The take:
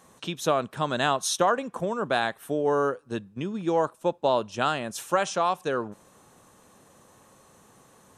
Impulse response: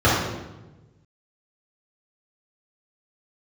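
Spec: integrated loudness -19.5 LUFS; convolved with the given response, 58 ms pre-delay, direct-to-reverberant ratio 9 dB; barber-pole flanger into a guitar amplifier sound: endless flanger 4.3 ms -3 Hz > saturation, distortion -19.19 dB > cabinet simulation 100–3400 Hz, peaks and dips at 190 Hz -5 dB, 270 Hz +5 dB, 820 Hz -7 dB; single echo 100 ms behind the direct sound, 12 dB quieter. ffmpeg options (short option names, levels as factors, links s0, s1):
-filter_complex "[0:a]aecho=1:1:100:0.251,asplit=2[s0][s1];[1:a]atrim=start_sample=2205,adelay=58[s2];[s1][s2]afir=irnorm=-1:irlink=0,volume=0.0251[s3];[s0][s3]amix=inputs=2:normalize=0,asplit=2[s4][s5];[s5]adelay=4.3,afreqshift=-3[s6];[s4][s6]amix=inputs=2:normalize=1,asoftclip=threshold=0.133,highpass=100,equalizer=f=190:t=q:w=4:g=-5,equalizer=f=270:t=q:w=4:g=5,equalizer=f=820:t=q:w=4:g=-7,lowpass=f=3400:w=0.5412,lowpass=f=3400:w=1.3066,volume=3.76"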